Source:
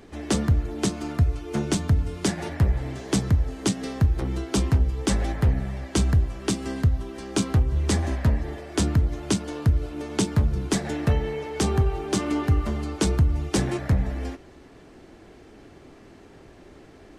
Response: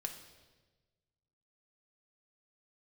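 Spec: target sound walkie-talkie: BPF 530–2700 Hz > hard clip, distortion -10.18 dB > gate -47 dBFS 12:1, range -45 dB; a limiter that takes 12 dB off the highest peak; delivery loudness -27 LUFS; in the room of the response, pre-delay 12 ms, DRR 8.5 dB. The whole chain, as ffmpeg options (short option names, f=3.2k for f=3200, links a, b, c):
-filter_complex "[0:a]alimiter=limit=-23dB:level=0:latency=1,asplit=2[a][b];[1:a]atrim=start_sample=2205,adelay=12[c];[b][c]afir=irnorm=-1:irlink=0,volume=-7.5dB[d];[a][d]amix=inputs=2:normalize=0,highpass=530,lowpass=2.7k,asoftclip=type=hard:threshold=-38.5dB,agate=range=-45dB:threshold=-47dB:ratio=12,volume=16.5dB"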